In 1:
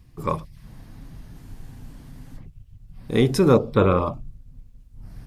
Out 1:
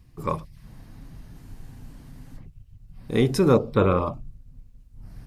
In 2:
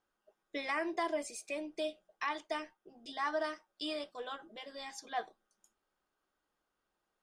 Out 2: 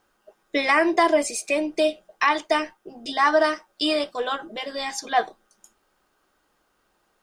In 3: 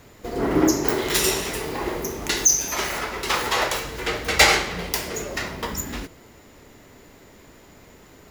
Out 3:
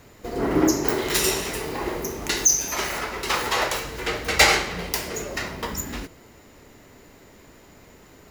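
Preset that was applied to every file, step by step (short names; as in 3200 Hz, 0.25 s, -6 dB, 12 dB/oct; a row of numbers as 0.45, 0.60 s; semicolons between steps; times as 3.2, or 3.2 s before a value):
notch 3400 Hz, Q 28; match loudness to -23 LUFS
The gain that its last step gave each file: -2.0, +16.0, -1.0 dB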